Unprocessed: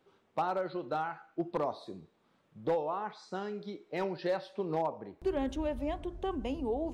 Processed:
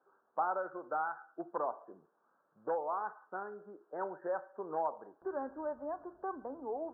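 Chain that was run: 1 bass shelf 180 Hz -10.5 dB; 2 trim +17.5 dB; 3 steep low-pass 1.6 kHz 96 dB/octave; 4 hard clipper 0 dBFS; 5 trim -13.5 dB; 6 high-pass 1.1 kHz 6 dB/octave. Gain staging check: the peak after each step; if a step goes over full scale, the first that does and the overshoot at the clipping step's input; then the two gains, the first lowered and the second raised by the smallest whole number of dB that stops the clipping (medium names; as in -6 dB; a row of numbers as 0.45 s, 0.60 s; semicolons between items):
-22.0 dBFS, -4.5 dBFS, -4.5 dBFS, -4.5 dBFS, -18.0 dBFS, -22.5 dBFS; nothing clips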